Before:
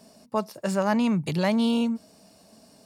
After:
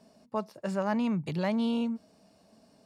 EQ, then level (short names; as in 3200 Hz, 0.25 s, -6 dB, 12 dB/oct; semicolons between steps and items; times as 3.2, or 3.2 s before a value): LPF 3200 Hz 6 dB/oct; -5.5 dB